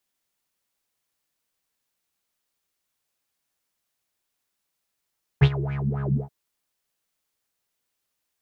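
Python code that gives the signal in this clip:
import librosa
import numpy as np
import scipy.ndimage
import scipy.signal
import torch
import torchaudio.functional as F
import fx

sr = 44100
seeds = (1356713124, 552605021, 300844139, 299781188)

y = fx.sub_patch_wobble(sr, seeds[0], note=49, wave='triangle', wave2='saw', interval_st=7, level2_db=-15.5, sub_db=-15.0, noise_db=-30.0, kind='lowpass', cutoff_hz=240.0, q=7.4, env_oct=2.5, env_decay_s=0.59, env_sustain_pct=45, attack_ms=18.0, decay_s=0.06, sustain_db=-17.0, release_s=0.12, note_s=0.76, lfo_hz=3.8, wobble_oct=1.6)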